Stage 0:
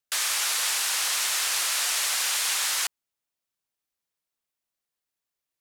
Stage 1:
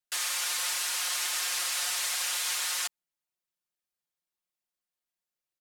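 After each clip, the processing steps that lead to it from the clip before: comb 5.6 ms, depth 93%; trim -7.5 dB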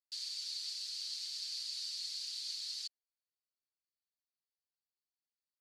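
ladder band-pass 4.7 kHz, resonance 80%; tilt EQ -2 dB/octave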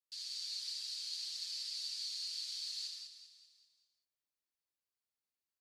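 on a send: feedback delay 194 ms, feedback 49%, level -10.5 dB; on the sum: gated-style reverb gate 230 ms flat, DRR 0 dB; trim -4 dB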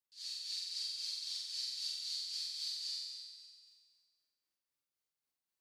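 tremolo 3.8 Hz, depth 85%; on a send: flutter echo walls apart 7.8 m, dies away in 1.4 s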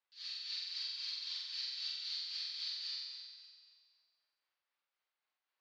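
band-pass 760–7200 Hz; distance through air 290 m; trim +10.5 dB

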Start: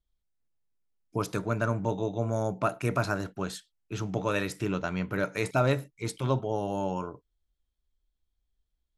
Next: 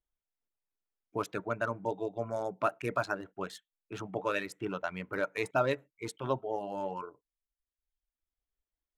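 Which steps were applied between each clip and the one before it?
local Wiener filter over 9 samples; tone controls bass -11 dB, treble -4 dB; reverb removal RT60 1 s; trim -1 dB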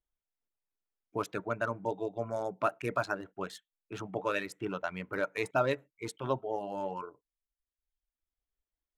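no audible change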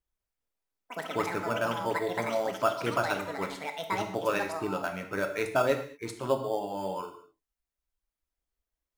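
in parallel at -9 dB: sample-and-hold 11×; on the sum: ever faster or slower copies 194 ms, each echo +7 st, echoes 2, each echo -6 dB; gated-style reverb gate 250 ms falling, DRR 5 dB

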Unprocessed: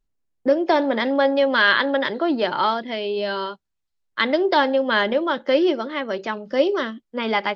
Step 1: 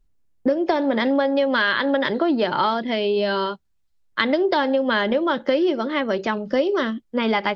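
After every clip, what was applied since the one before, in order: bass shelf 210 Hz +8.5 dB; compression, threshold -20 dBFS, peak gain reduction 9.5 dB; trim +3.5 dB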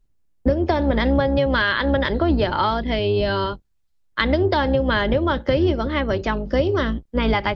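octave divider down 2 oct, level +1 dB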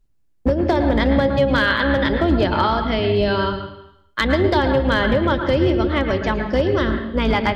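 hard clipper -11 dBFS, distortion -25 dB; on a send at -5 dB: reverberation RT60 0.85 s, pre-delay 106 ms; on the sum: trim +1 dB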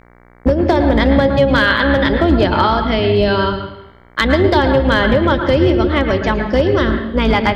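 mains buzz 60 Hz, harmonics 38, -51 dBFS -3 dB/octave; trim +4.5 dB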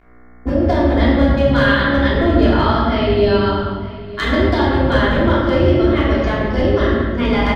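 delay 911 ms -17.5 dB; simulated room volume 700 m³, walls mixed, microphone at 3.2 m; trim -10 dB

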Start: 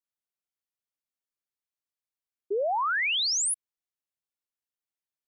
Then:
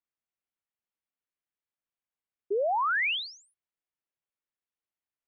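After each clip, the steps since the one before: low-pass 3 kHz 24 dB/octave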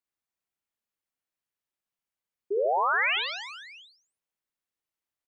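reverse bouncing-ball echo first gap 60 ms, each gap 1.4×, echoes 5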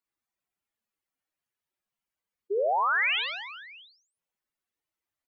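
spectral contrast enhancement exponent 2.1

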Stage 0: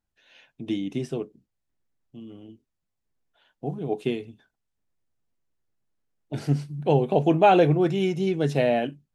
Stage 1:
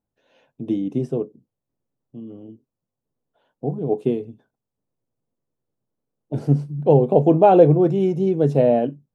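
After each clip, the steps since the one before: graphic EQ 125/250/500/1000/2000/4000 Hz +11/+8/+12/+6/-5/-3 dB; trim -6.5 dB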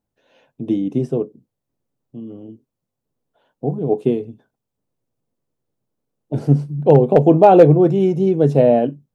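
hard clipper -4.5 dBFS, distortion -29 dB; trim +3.5 dB

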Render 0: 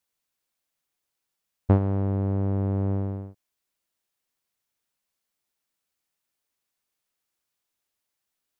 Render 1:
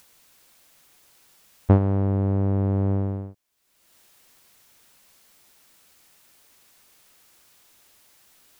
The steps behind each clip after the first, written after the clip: upward compressor, threshold -42 dBFS; trim +3 dB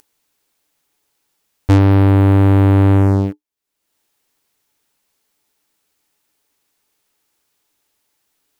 waveshaping leveller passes 5; small resonant body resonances 300/420/860 Hz, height 8 dB, ringing for 95 ms; trim -1.5 dB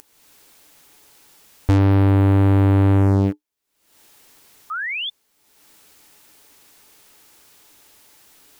peak limiter -11.5 dBFS, peak gain reduction 8 dB; painted sound rise, 4.70–5.10 s, 1.2–3.6 kHz -28 dBFS; upward compressor, threshold -40 dBFS; trim +2 dB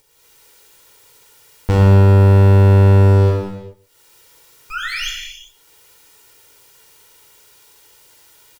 comb filter that takes the minimum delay 2.1 ms; delay 138 ms -19.5 dB; reverberation, pre-delay 3 ms, DRR -2 dB

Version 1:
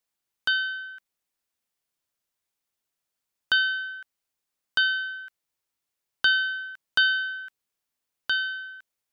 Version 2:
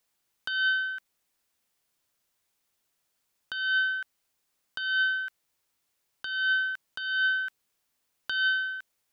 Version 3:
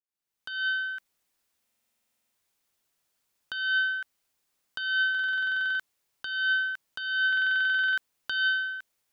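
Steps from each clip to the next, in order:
compressor with a negative ratio -30 dBFS, ratio -1; trim +2.5 dB
fade-in on the opening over 0.94 s; buffer glitch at 1.64/5.10/7.28 s, samples 2048, times 14

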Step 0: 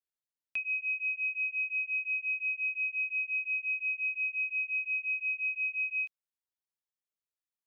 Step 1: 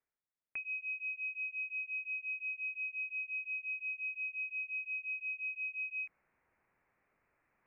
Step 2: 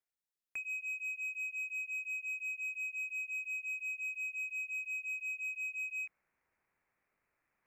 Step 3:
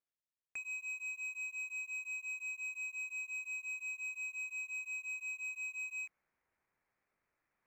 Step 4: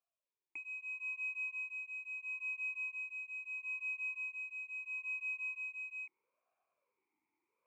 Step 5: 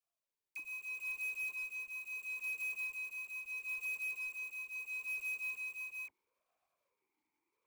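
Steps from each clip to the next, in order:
steep low-pass 2.4 kHz 72 dB/octave; reverse; upward compressor, threshold -57 dBFS; reverse
treble shelf 2.4 kHz +7 dB; waveshaping leveller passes 1; trim -5 dB
median filter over 9 samples; trim -1.5 dB
talking filter a-u 0.76 Hz; trim +11.5 dB
block-companded coder 3-bit; phase dispersion lows, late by 42 ms, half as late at 1 kHz

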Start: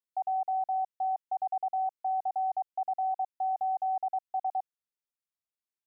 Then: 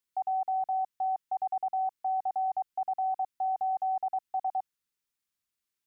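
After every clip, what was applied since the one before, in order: peaking EQ 630 Hz -9.5 dB 0.99 oct; trim +7.5 dB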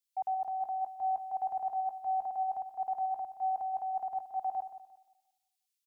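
peak limiter -33.5 dBFS, peak gain reduction 8 dB; on a send: feedback delay 176 ms, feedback 51%, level -9 dB; on the sum: three bands expanded up and down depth 70%; trim +5.5 dB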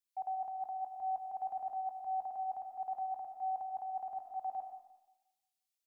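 reverberation RT60 0.65 s, pre-delay 40 ms, DRR 6 dB; trim -5 dB

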